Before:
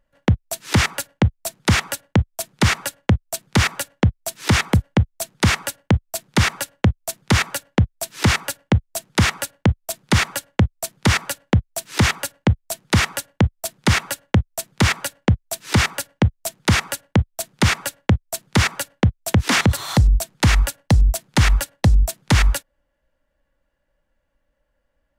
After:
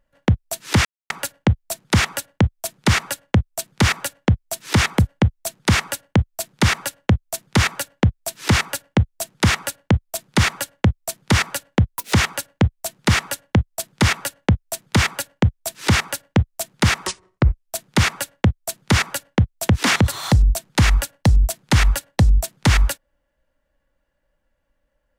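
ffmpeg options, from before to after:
-filter_complex "[0:a]asplit=6[a][b][c][d][e][f];[a]atrim=end=0.85,asetpts=PTS-STARTPTS,afade=t=out:st=0.846:d=0.004:c=hsin,apad=pad_dur=0.25[g];[b]atrim=start=0.85:end=11.664,asetpts=PTS-STARTPTS,afade=t=in:d=0.004:c=hsin[h];[c]atrim=start=11.66:end=11.99,asetpts=PTS-STARTPTS,asetrate=65268,aresample=44100,atrim=end_sample=9833,asetpts=PTS-STARTPTS[i];[d]atrim=start=11.986:end=16.924[j];[e]atrim=start=16.92:end=17.32,asetpts=PTS-STARTPTS,asetrate=29106,aresample=44100,atrim=end_sample=26727,asetpts=PTS-STARTPTS[k];[f]atrim=start=17.316[l];[g][h]concat=n=2:v=0:a=1[m];[m][i]acrossfade=d=0.004:c1=hsin:c2=hsin[n];[n][j]acrossfade=d=0.004:c1=hsin:c2=hsin[o];[o][k]acrossfade=d=0.004:c1=hsin:c2=hsin[p];[p][l]acrossfade=d=0.004:c1=hsin:c2=hsin"

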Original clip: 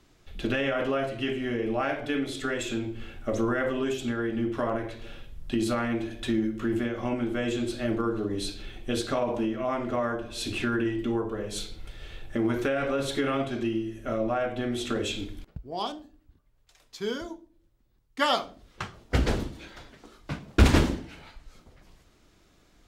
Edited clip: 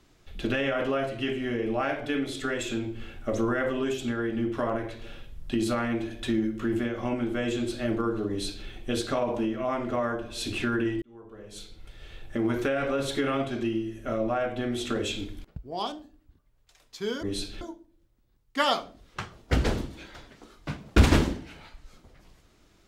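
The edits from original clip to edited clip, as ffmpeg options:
-filter_complex "[0:a]asplit=4[a][b][c][d];[a]atrim=end=11.02,asetpts=PTS-STARTPTS,afade=t=out:st=11.016:d=0.004:c=hsin[e];[b]atrim=start=11.02:end=17.232,asetpts=PTS-STARTPTS,afade=t=in:d=1.52[f];[c]atrim=start=8.288:end=8.672[g];[d]atrim=start=17.228[h];[e][f]concat=n=2:v=0:a=1[i];[i][g]acrossfade=d=0.004:c1=hsin:c2=hsin[j];[j][h]acrossfade=d=0.004:c1=hsin:c2=hsin"

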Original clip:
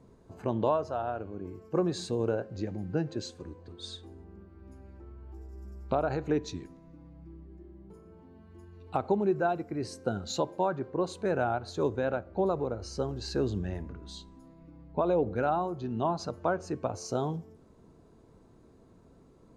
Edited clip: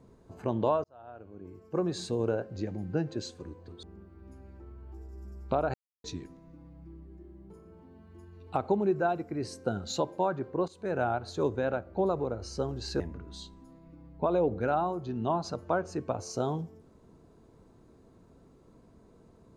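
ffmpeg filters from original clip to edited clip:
-filter_complex "[0:a]asplit=7[a][b][c][d][e][f][g];[a]atrim=end=0.84,asetpts=PTS-STARTPTS,afade=t=out:st=0.836:d=0.004:c=hsin[h];[b]atrim=start=0.84:end=3.832,asetpts=PTS-STARTPTS,afade=t=in:d=1.22[i];[c]atrim=start=4.228:end=6.14,asetpts=PTS-STARTPTS,afade=t=out:st=1.908:d=0.004:c=hsin[j];[d]atrim=start=6.14:end=6.44,asetpts=PTS-STARTPTS,volume=0[k];[e]atrim=start=6.44:end=11.08,asetpts=PTS-STARTPTS,afade=t=in:d=0.004:c=hsin,afade=t=out:st=4.636:d=0.004:c=hsin:silence=0.158489[l];[f]atrim=start=11.08:end=13.402,asetpts=PTS-STARTPTS,afade=t=in:d=0.35:silence=0.158489[m];[g]atrim=start=13.748[n];[h][i]concat=n=2:v=0:a=1[o];[j][k][l][m]concat=n=4:v=0:a=1[p];[o][p]acrossfade=d=0.004:c1=hsin:c2=hsin[q];[q][n]acrossfade=d=0.004:c1=hsin:c2=hsin"

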